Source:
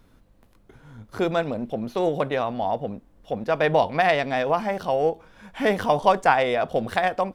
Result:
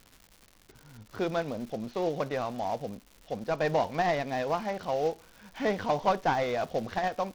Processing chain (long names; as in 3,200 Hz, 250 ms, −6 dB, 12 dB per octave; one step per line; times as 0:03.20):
variable-slope delta modulation 32 kbit/s
surface crackle 240 per second −35 dBFS
level −6.5 dB